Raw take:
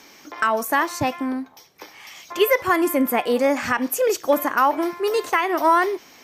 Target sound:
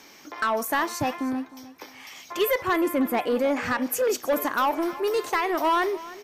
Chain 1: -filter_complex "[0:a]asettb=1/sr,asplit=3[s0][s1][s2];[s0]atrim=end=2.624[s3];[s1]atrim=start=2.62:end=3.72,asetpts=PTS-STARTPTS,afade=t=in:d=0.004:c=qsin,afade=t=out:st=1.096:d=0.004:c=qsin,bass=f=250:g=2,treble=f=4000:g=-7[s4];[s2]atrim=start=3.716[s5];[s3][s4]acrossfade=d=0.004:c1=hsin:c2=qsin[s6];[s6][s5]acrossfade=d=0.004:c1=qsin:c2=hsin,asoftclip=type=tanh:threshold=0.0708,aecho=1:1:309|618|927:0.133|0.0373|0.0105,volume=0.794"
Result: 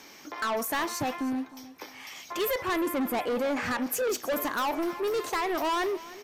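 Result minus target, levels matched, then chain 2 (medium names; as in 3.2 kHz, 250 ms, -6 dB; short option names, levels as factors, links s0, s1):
saturation: distortion +7 dB
-filter_complex "[0:a]asettb=1/sr,asplit=3[s0][s1][s2];[s0]atrim=end=2.624[s3];[s1]atrim=start=2.62:end=3.72,asetpts=PTS-STARTPTS,afade=t=in:d=0.004:c=qsin,afade=t=out:st=1.096:d=0.004:c=qsin,bass=f=250:g=2,treble=f=4000:g=-7[s4];[s2]atrim=start=3.716[s5];[s3][s4]acrossfade=d=0.004:c1=hsin:c2=qsin[s6];[s6][s5]acrossfade=d=0.004:c1=qsin:c2=hsin,asoftclip=type=tanh:threshold=0.188,aecho=1:1:309|618|927:0.133|0.0373|0.0105,volume=0.794"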